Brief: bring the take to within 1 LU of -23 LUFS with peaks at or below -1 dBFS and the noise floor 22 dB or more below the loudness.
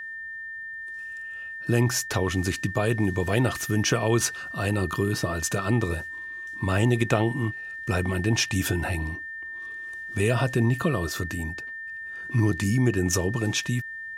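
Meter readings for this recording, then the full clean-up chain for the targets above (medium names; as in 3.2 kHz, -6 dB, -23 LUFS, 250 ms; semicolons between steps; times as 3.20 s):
steady tone 1.8 kHz; tone level -34 dBFS; loudness -26.5 LUFS; peak level -7.5 dBFS; loudness target -23.0 LUFS
-> band-stop 1.8 kHz, Q 30; trim +3.5 dB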